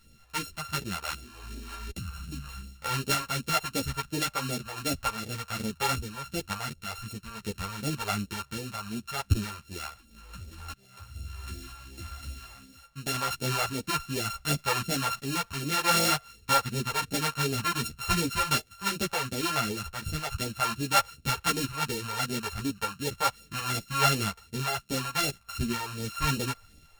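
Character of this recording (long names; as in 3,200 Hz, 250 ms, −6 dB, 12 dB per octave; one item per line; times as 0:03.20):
a buzz of ramps at a fixed pitch in blocks of 32 samples
phaser sweep stages 2, 2.7 Hz, lowest notch 240–1,100 Hz
sample-and-hold tremolo 3.5 Hz
a shimmering, thickened sound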